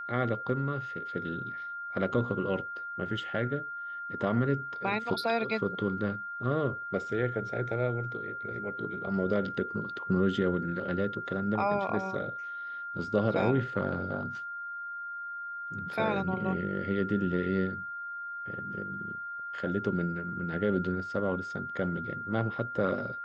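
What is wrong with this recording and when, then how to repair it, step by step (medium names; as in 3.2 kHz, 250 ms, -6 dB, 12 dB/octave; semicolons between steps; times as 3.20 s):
whine 1.4 kHz -36 dBFS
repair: band-stop 1.4 kHz, Q 30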